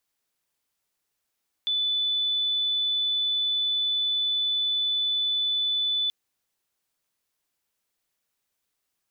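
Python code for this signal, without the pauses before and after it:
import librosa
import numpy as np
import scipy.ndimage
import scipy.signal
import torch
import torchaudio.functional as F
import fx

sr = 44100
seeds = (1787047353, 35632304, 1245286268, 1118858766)

y = 10.0 ** (-22.5 / 20.0) * np.sin(2.0 * np.pi * (3490.0 * (np.arange(round(4.43 * sr)) / sr)))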